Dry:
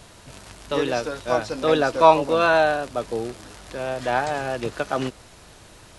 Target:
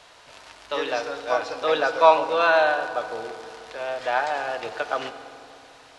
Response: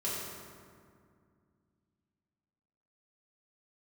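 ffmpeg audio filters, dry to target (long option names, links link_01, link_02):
-filter_complex "[0:a]acrossover=split=480 5800:gain=0.112 1 0.2[link_01][link_02][link_03];[link_01][link_02][link_03]amix=inputs=3:normalize=0,asplit=2[link_04][link_05];[1:a]atrim=start_sample=2205,asetrate=33516,aresample=44100[link_06];[link_05][link_06]afir=irnorm=-1:irlink=0,volume=-13.5dB[link_07];[link_04][link_07]amix=inputs=2:normalize=0,volume=-1dB"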